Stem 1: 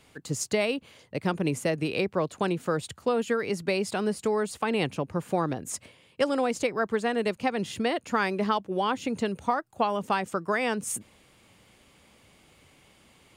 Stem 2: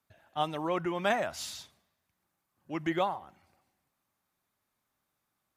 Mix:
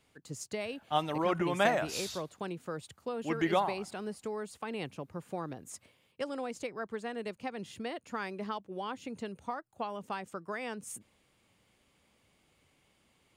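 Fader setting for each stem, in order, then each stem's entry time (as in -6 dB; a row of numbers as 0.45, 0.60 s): -11.5, +1.0 dB; 0.00, 0.55 s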